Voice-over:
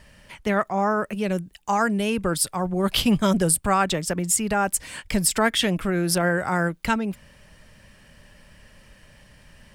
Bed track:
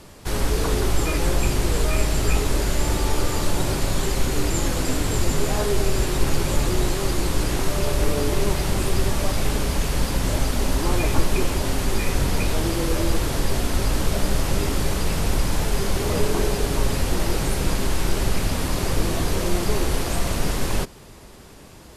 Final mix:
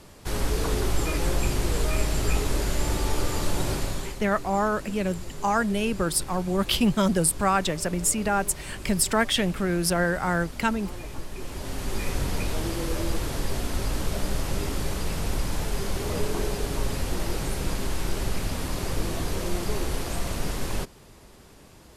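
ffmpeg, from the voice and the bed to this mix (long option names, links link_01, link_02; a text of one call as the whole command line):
ffmpeg -i stem1.wav -i stem2.wav -filter_complex "[0:a]adelay=3750,volume=-2dB[link_01];[1:a]volume=6.5dB,afade=type=out:start_time=3.73:duration=0.47:silence=0.237137,afade=type=in:start_time=11.35:duration=0.71:silence=0.298538[link_02];[link_01][link_02]amix=inputs=2:normalize=0" out.wav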